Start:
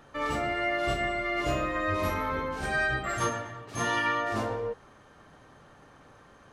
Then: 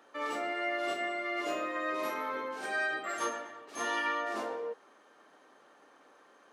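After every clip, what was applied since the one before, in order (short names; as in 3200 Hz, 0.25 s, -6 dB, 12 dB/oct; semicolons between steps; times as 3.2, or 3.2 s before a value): HPF 280 Hz 24 dB/oct; gain -4.5 dB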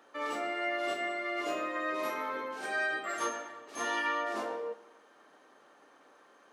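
Schroeder reverb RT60 1.3 s, combs from 29 ms, DRR 16 dB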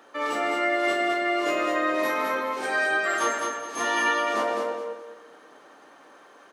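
feedback echo 0.209 s, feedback 28%, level -4 dB; gain +7.5 dB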